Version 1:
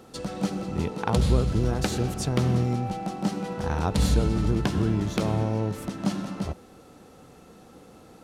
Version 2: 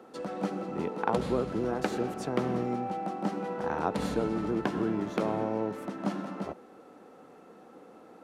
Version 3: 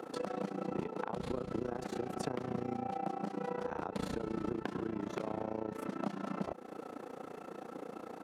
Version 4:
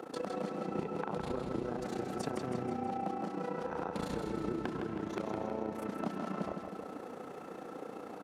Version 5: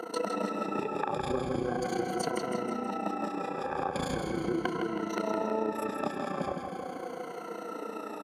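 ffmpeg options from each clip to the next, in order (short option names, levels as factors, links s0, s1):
-filter_complex "[0:a]acrossover=split=210 2200:gain=0.0631 1 0.224[s0][s1][s2];[s0][s1][s2]amix=inputs=3:normalize=0"
-af "alimiter=limit=0.0841:level=0:latency=1:release=261,acompressor=threshold=0.00708:ratio=4,tremolo=f=29:d=0.889,volume=3.16"
-af "aecho=1:1:160|320|480|640|800|960|1120:0.501|0.276|0.152|0.0834|0.0459|0.0252|0.0139"
-af "afftfilt=real='re*pow(10,16/40*sin(2*PI*(1.9*log(max(b,1)*sr/1024/100)/log(2)-(-0.4)*(pts-256)/sr)))':imag='im*pow(10,16/40*sin(2*PI*(1.9*log(max(b,1)*sr/1024/100)/log(2)-(-0.4)*(pts-256)/sr)))':win_size=1024:overlap=0.75,aresample=32000,aresample=44100,lowshelf=f=240:g=-8,volume=1.78"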